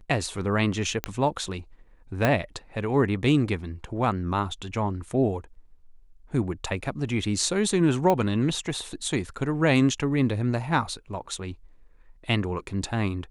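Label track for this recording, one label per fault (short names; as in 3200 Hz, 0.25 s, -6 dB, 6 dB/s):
1.040000	1.040000	pop -10 dBFS
2.250000	2.250000	pop -8 dBFS
8.100000	8.100000	pop -11 dBFS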